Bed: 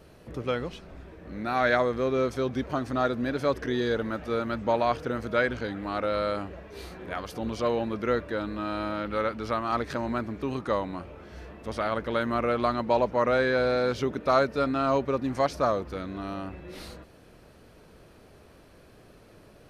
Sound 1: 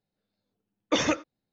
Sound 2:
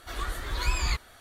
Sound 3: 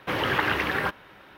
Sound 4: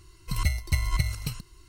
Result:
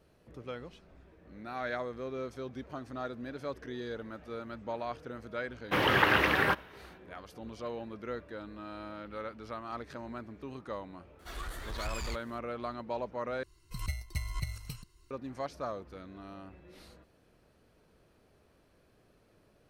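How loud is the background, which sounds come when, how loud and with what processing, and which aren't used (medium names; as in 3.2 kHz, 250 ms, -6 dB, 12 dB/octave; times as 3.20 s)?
bed -12.5 dB
5.64 s: add 3 -0.5 dB, fades 0.10 s + expander -48 dBFS
11.19 s: add 2 -17.5 dB + waveshaping leveller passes 3
13.43 s: replace with 4 -10.5 dB
not used: 1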